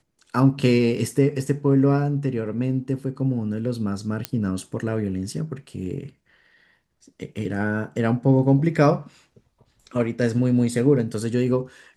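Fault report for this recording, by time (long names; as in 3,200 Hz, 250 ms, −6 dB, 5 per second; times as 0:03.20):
0:04.25: click −8 dBFS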